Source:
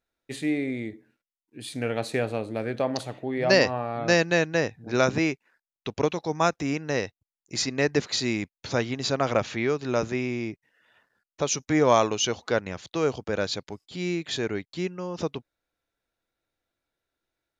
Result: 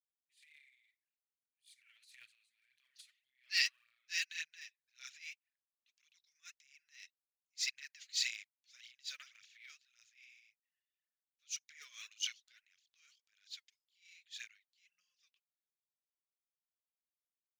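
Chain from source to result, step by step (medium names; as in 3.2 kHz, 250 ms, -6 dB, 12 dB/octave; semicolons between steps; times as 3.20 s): phaser 1.8 Hz, delay 4 ms, feedback 63%; inverse Chebyshev high-pass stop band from 850 Hz, stop band 50 dB; transient shaper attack -9 dB, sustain +9 dB; upward expansion 2.5:1, over -43 dBFS; trim -4 dB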